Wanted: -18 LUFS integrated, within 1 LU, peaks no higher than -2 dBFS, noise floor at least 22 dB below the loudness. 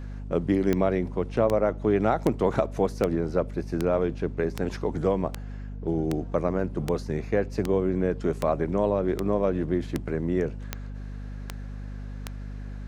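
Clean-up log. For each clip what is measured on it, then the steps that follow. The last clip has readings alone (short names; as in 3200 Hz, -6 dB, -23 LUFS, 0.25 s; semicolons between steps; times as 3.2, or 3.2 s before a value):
clicks 16; hum 50 Hz; harmonics up to 250 Hz; hum level -34 dBFS; loudness -26.5 LUFS; peak -8.5 dBFS; loudness target -18.0 LUFS
-> de-click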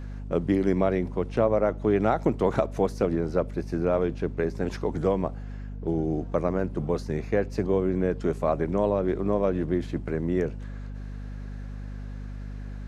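clicks 0; hum 50 Hz; harmonics up to 250 Hz; hum level -34 dBFS
-> de-hum 50 Hz, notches 5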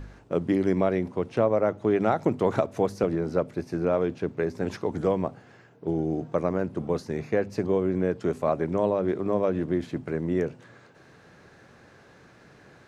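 hum none; loudness -27.0 LUFS; peak -8.5 dBFS; loudness target -18.0 LUFS
-> gain +9 dB; limiter -2 dBFS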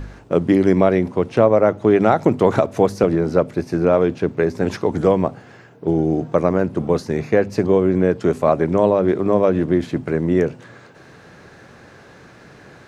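loudness -18.0 LUFS; peak -2.0 dBFS; noise floor -45 dBFS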